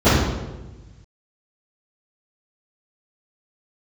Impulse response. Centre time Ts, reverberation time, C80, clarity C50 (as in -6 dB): 82 ms, 1.2 s, 2.5 dB, -1.0 dB